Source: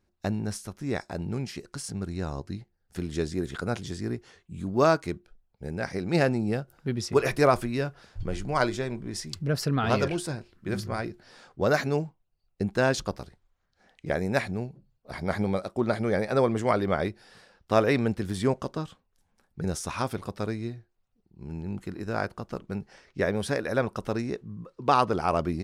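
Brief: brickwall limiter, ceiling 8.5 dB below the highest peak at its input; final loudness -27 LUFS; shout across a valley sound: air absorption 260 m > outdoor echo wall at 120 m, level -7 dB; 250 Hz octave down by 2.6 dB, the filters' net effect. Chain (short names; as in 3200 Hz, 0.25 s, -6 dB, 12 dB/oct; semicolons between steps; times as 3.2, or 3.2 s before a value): bell 250 Hz -3 dB; limiter -17 dBFS; air absorption 260 m; outdoor echo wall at 120 m, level -7 dB; gain +6 dB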